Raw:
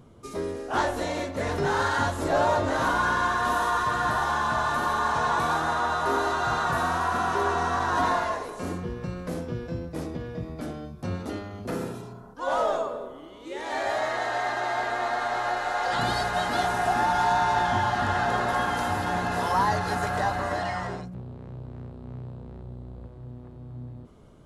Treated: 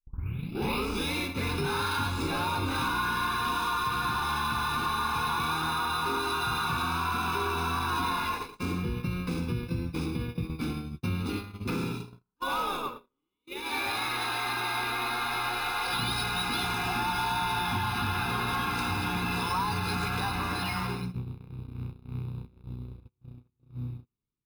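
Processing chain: tape start-up on the opening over 1.14 s; high-order bell 3.5 kHz +13.5 dB; comb 0.8 ms, depth 98%; on a send: delay 107 ms -13 dB; on the sum: level rider gain up to 3 dB; in parallel at -1 dB: peak limiter -18.5 dBFS, peak gain reduction 14 dB; on the sum: careless resampling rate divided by 3×, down none, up hold; treble shelf 2.4 kHz -8.5 dB; compression 3:1, threshold -19 dBFS, peak gain reduction 5.5 dB; gate -24 dBFS, range -43 dB; trim -8 dB

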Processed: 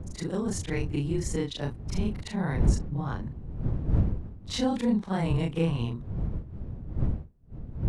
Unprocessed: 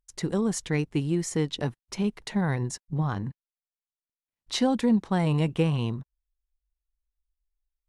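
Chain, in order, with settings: short-time spectra conjugated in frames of 85 ms; wind noise 110 Hz -31 dBFS

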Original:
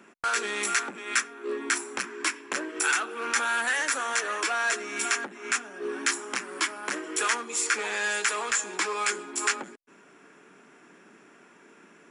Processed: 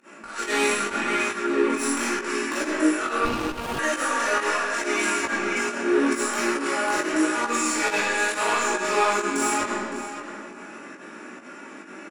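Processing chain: band-stop 3.3 kHz, Q 10; comb 3.5 ms, depth 46%; compressor with a negative ratio -31 dBFS, ratio -0.5; sine folder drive 7 dB, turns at -15 dBFS; algorithmic reverb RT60 1.6 s, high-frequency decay 0.8×, pre-delay 0 ms, DRR -8.5 dB; volume shaper 137 bpm, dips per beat 1, -21 dB, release 107 ms; chorus 0.79 Hz, delay 16 ms, depth 5.6 ms; tape echo 563 ms, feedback 22%, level -10 dB, low-pass 5.4 kHz; 3.25–3.79 s: sliding maximum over 17 samples; trim -7.5 dB

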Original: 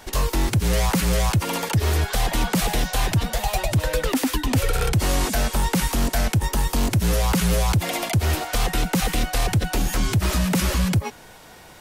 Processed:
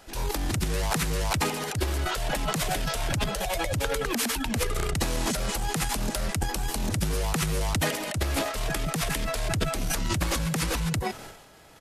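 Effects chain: pitch shift -2 st; transient shaper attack -4 dB, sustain +11 dB; trim -7.5 dB

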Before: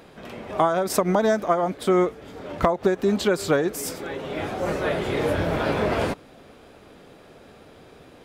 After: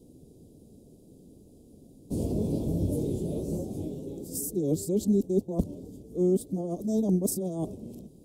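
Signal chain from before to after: reverse the whole clip; Chebyshev band-stop 270–8700 Hz, order 2

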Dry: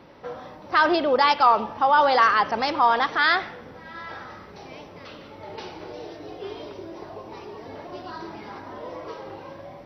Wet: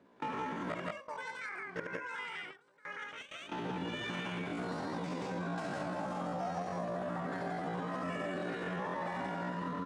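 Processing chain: median filter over 5 samples; inverted gate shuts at -21 dBFS, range -27 dB; peaking EQ 120 Hz +14.5 dB 2 oct; hum notches 60/120/180/240/300/360/420/480/540/600 Hz; loudspeakers at several distances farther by 25 m -4 dB, 59 m -1 dB; compression 6:1, threshold -35 dBFS, peak gain reduction 10 dB; gate with hold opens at -33 dBFS; pitch shift +10 st; treble shelf 4.6 kHz -11 dB; trim +1 dB

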